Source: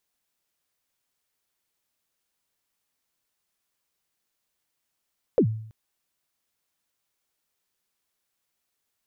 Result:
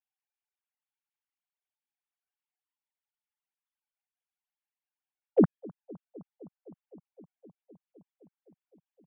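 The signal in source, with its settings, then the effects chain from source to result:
kick drum length 0.33 s, from 560 Hz, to 110 Hz, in 80 ms, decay 0.63 s, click off, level -13 dB
sine-wave speech; analogue delay 0.257 s, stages 2048, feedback 83%, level -23 dB

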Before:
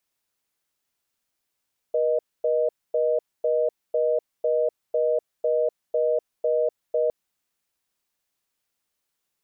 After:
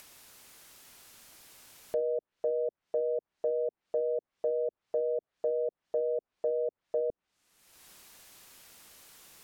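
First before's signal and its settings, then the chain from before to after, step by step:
call progress tone reorder tone, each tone -22 dBFS 5.16 s
treble ducked by the level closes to 350 Hz, closed at -19.5 dBFS; limiter -21.5 dBFS; upward compressor, threshold -34 dBFS

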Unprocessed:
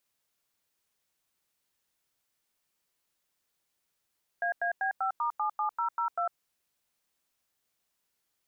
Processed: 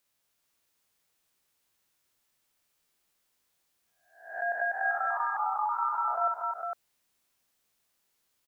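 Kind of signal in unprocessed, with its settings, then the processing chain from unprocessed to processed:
DTMF "AAB5*77002", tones 0.102 s, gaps 93 ms, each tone -29.5 dBFS
spectral swells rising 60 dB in 0.55 s; tapped delay 59/236/455 ms -9.5/-7.5/-4.5 dB

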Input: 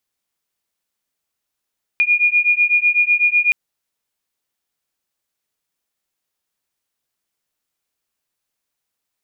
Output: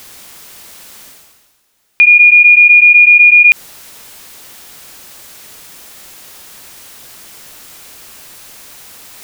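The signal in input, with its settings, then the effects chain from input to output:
beating tones 2430 Hz, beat 8 Hz, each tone -15.5 dBFS 1.52 s
reverse; upward compressor, threshold -36 dBFS; reverse; maximiser +20 dB

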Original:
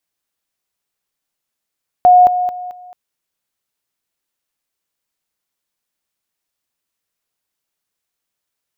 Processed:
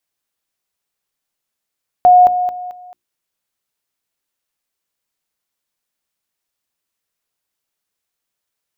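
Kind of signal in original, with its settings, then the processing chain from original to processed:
level ladder 723 Hz -4 dBFS, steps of -10 dB, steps 4, 0.22 s 0.00 s
notches 60/120/180/240/300/360 Hz

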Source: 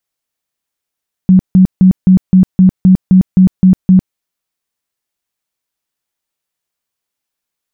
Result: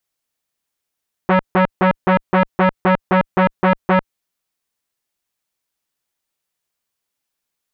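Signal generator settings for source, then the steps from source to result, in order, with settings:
tone bursts 186 Hz, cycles 19, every 0.26 s, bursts 11, -2 dBFS
core saturation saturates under 910 Hz

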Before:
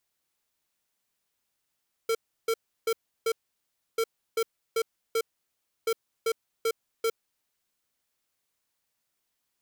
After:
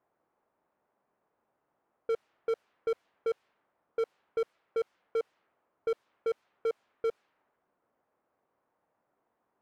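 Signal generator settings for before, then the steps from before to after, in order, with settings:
beep pattern square 453 Hz, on 0.06 s, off 0.33 s, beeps 4, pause 0.66 s, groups 3, -25.5 dBFS
overdrive pedal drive 26 dB, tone 1100 Hz, clips at -25 dBFS; low-pass opened by the level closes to 910 Hz, open at -30 dBFS; high shelf 3700 Hz -7 dB

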